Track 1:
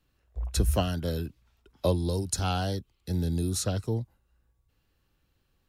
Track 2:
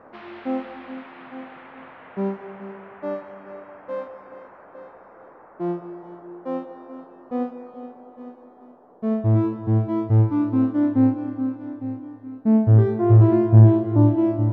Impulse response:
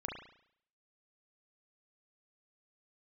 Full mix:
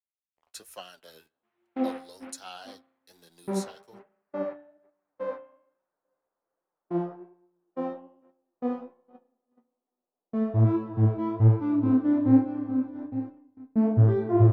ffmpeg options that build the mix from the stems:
-filter_complex "[0:a]highpass=720,aeval=exprs='sgn(val(0))*max(abs(val(0))-0.002,0)':channel_layout=same,volume=-5.5dB,asplit=2[link_01][link_02];[link_02]volume=-23.5dB[link_03];[1:a]agate=range=-36dB:threshold=-33dB:ratio=16:detection=peak,adelay=1300,volume=-2dB,asplit=2[link_04][link_05];[link_05]volume=-10dB[link_06];[2:a]atrim=start_sample=2205[link_07];[link_03][link_06]amix=inputs=2:normalize=0[link_08];[link_08][link_07]afir=irnorm=-1:irlink=0[link_09];[link_01][link_04][link_09]amix=inputs=3:normalize=0,flanger=delay=5.3:depth=7.8:regen=42:speed=1.2:shape=sinusoidal,adynamicequalizer=threshold=0.00141:dfrequency=6500:dqfactor=0.7:tfrequency=6500:tqfactor=0.7:attack=5:release=100:ratio=0.375:range=2.5:mode=cutabove:tftype=highshelf"

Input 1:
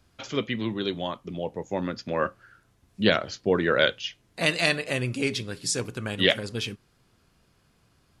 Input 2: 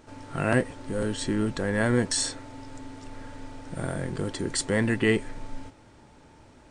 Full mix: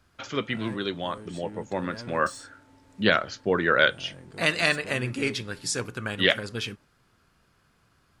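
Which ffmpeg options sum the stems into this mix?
ffmpeg -i stem1.wav -i stem2.wav -filter_complex "[0:a]equalizer=frequency=1400:width=1.3:gain=7,volume=-2dB[link_01];[1:a]highpass=48,asoftclip=type=tanh:threshold=-21dB,adelay=150,volume=-14dB[link_02];[link_01][link_02]amix=inputs=2:normalize=0" out.wav

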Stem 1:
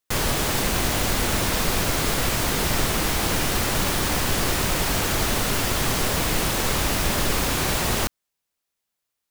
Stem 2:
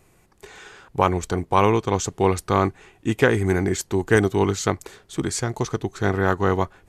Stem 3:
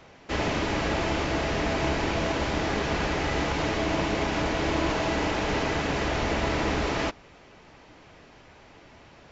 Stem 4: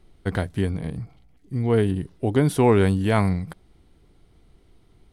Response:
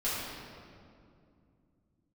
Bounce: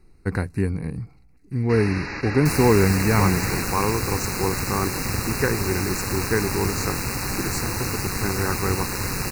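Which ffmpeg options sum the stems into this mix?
-filter_complex "[0:a]aeval=exprs='val(0)*sin(2*PI*96*n/s)':channel_layout=same,adelay=2350,volume=-0.5dB[link_01];[1:a]adelay=2200,volume=-5dB[link_02];[2:a]lowpass=frequency=4900:width_type=q:width=2,equalizer=frequency=1800:width=1.5:gain=8.5,adelay=1400,volume=-6.5dB[link_03];[3:a]volume=1dB,asplit=2[link_04][link_05];[link_05]apad=whole_len=472608[link_06];[link_03][link_06]sidechaingate=range=-33dB:threshold=-46dB:ratio=16:detection=peak[link_07];[link_01][link_02][link_07][link_04]amix=inputs=4:normalize=0,asuperstop=centerf=3300:order=20:qfactor=3,equalizer=frequency=640:width_type=o:width=0.29:gain=-11.5"

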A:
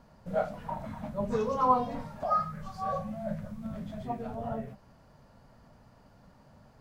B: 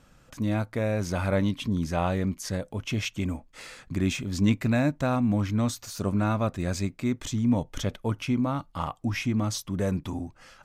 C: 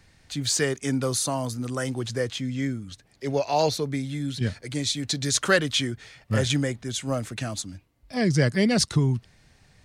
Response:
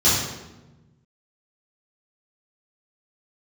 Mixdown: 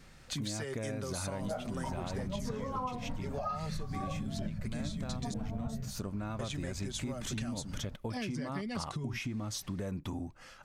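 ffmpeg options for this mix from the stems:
-filter_complex "[0:a]asubboost=boost=6.5:cutoff=180,adelay=1150,volume=2.5dB[link_01];[1:a]acompressor=threshold=-29dB:ratio=3,volume=-2dB[link_02];[2:a]aecho=1:1:5.2:0.46,acompressor=threshold=-31dB:ratio=5,volume=-2dB,asplit=3[link_03][link_04][link_05];[link_03]atrim=end=5.34,asetpts=PTS-STARTPTS,afade=type=out:start_time=5.336:duration=0.004:curve=hsin[link_06];[link_04]atrim=start=5.34:end=6.39,asetpts=PTS-STARTPTS,volume=0[link_07];[link_05]atrim=start=6.39,asetpts=PTS-STARTPTS,afade=type=in:duration=0.004:curve=hsin[link_08];[link_06][link_07][link_08]concat=n=3:v=0:a=1[link_09];[link_01][link_02][link_09]amix=inputs=3:normalize=0,acompressor=threshold=-33dB:ratio=12"

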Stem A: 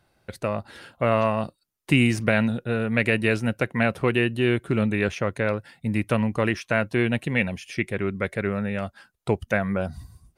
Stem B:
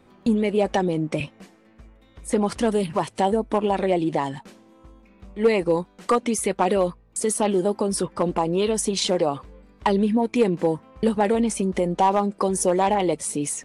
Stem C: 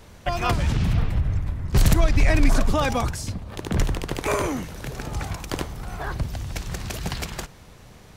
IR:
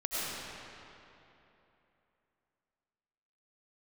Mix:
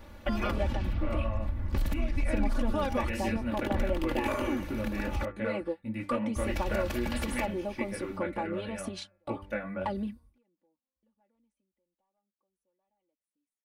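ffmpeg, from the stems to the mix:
-filter_complex "[0:a]flanger=delay=17:depth=7.9:speed=1.5,bandreject=frequency=98.18:width_type=h:width=4,bandreject=frequency=196.36:width_type=h:width=4,bandreject=frequency=294.54:width_type=h:width=4,bandreject=frequency=392.72:width_type=h:width=4,bandreject=frequency=490.9:width_type=h:width=4,bandreject=frequency=589.08:width_type=h:width=4,bandreject=frequency=687.26:width_type=h:width=4,bandreject=frequency=785.44:width_type=h:width=4,bandreject=frequency=883.62:width_type=h:width=4,bandreject=frequency=981.8:width_type=h:width=4,bandreject=frequency=1079.98:width_type=h:width=4,bandreject=frequency=1178.16:width_type=h:width=4,bandreject=frequency=1276.34:width_type=h:width=4,bandreject=frequency=1374.52:width_type=h:width=4,bandreject=frequency=1472.7:width_type=h:width=4,bandreject=frequency=1570.88:width_type=h:width=4,bandreject=frequency=1669.06:width_type=h:width=4,bandreject=frequency=1767.24:width_type=h:width=4,bandreject=frequency=1865.42:width_type=h:width=4,bandreject=frequency=1963.6:width_type=h:width=4,bandreject=frequency=2061.78:width_type=h:width=4,bandreject=frequency=2159.96:width_type=h:width=4,bandreject=frequency=2258.14:width_type=h:width=4,bandreject=frequency=2356.32:width_type=h:width=4,bandreject=frequency=2454.5:width_type=h:width=4,bandreject=frequency=2552.68:width_type=h:width=4,volume=-8.5dB,asplit=2[link_01][link_02];[1:a]acompressor=threshold=-24dB:ratio=1.5,volume=-11.5dB,afade=type=out:start_time=11.46:duration=0.27:silence=0.375837[link_03];[2:a]volume=-4dB,asplit=3[link_04][link_05][link_06];[link_04]atrim=end=5.25,asetpts=PTS-STARTPTS,afade=type=out:start_time=5.246:duration=0.004:curve=hsin[link_07];[link_05]atrim=start=5.25:end=6.36,asetpts=PTS-STARTPTS,volume=0[link_08];[link_06]atrim=start=6.36,asetpts=PTS-STARTPTS,afade=type=in:duration=0.004:curve=hsin[link_09];[link_07][link_08][link_09]concat=n=3:v=0:a=1[link_10];[link_02]apad=whole_len=601719[link_11];[link_03][link_11]sidechaingate=range=-41dB:threshold=-53dB:ratio=16:detection=peak[link_12];[link_01][link_10]amix=inputs=2:normalize=0,acompressor=threshold=-28dB:ratio=12,volume=0dB[link_13];[link_12][link_13]amix=inputs=2:normalize=0,equalizer=frequency=7300:width=0.79:gain=-11,aecho=1:1:3.5:0.83"

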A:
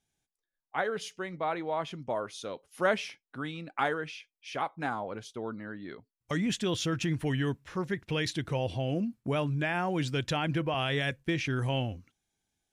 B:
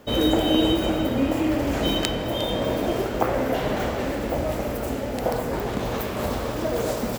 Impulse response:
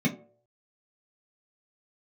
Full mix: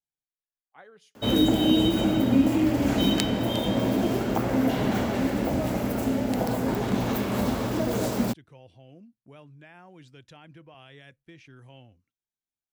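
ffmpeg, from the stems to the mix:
-filter_complex "[0:a]volume=-19.5dB[link_01];[1:a]highpass=57,adelay=1150,volume=-0.5dB,asplit=2[link_02][link_03];[link_03]volume=-20.5dB[link_04];[2:a]atrim=start_sample=2205[link_05];[link_04][link_05]afir=irnorm=-1:irlink=0[link_06];[link_01][link_02][link_06]amix=inputs=3:normalize=0,equalizer=frequency=68:width=4:gain=-5,acrossover=split=320|3000[link_07][link_08][link_09];[link_08]acompressor=threshold=-26dB:ratio=6[link_10];[link_07][link_10][link_09]amix=inputs=3:normalize=0"

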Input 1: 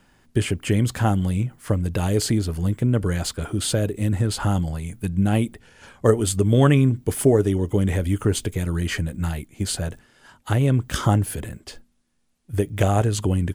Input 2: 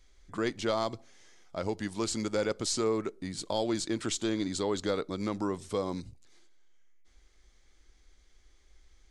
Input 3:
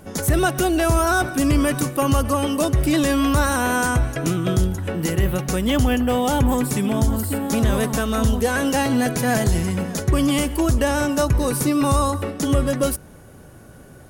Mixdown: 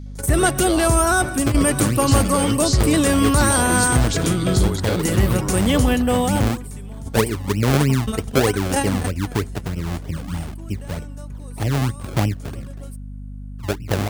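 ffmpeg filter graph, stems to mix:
ffmpeg -i stem1.wav -i stem2.wav -i stem3.wav -filter_complex "[0:a]lowpass=frequency=1200:width=0.5412,lowpass=frequency=1200:width=1.3066,acrusher=samples=32:mix=1:aa=0.000001:lfo=1:lforange=32:lforate=3.2,highpass=frequency=76:width=0.5412,highpass=frequency=76:width=1.3066,adelay=1100,volume=-1.5dB[link_01];[1:a]equalizer=frequency=4600:width=0.99:gain=7.5,volume=1dB,asplit=2[link_02][link_03];[2:a]equalizer=frequency=8600:width=5.8:gain=11.5,volume=1dB[link_04];[link_03]apad=whole_len=621699[link_05];[link_04][link_05]sidechaingate=range=-25dB:threshold=-54dB:ratio=16:detection=peak[link_06];[link_01][link_02][link_06]amix=inputs=3:normalize=0,aeval=exprs='val(0)+0.0251*(sin(2*PI*50*n/s)+sin(2*PI*2*50*n/s)/2+sin(2*PI*3*50*n/s)/3+sin(2*PI*4*50*n/s)/4+sin(2*PI*5*50*n/s)/5)':channel_layout=same" out.wav

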